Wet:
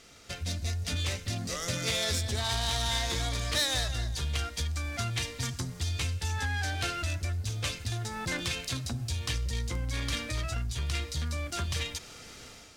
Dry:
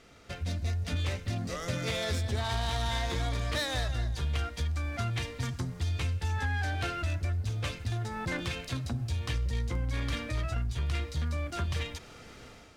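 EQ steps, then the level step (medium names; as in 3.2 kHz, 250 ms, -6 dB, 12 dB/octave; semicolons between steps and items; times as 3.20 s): treble shelf 3.3 kHz +10 dB; peaking EQ 6.1 kHz +3 dB 1.7 oct; -1.5 dB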